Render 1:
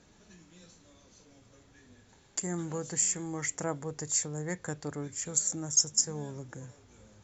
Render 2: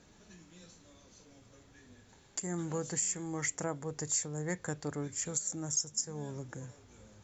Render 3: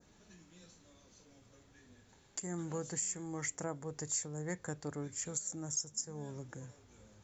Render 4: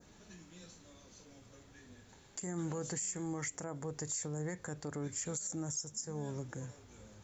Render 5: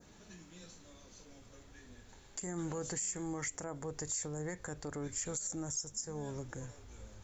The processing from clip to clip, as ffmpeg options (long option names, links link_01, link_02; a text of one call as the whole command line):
ffmpeg -i in.wav -af "alimiter=limit=-21.5dB:level=0:latency=1:release=335" out.wav
ffmpeg -i in.wav -af "adynamicequalizer=threshold=0.00282:dfrequency=3100:dqfactor=0.86:tfrequency=3100:tqfactor=0.86:attack=5:release=100:ratio=0.375:range=2.5:mode=cutabove:tftype=bell,volume=-3.5dB" out.wav
ffmpeg -i in.wav -af "alimiter=level_in=10dB:limit=-24dB:level=0:latency=1:release=56,volume=-10dB,volume=4.5dB" out.wav
ffmpeg -i in.wav -af "asubboost=boost=7:cutoff=54,volume=1dB" out.wav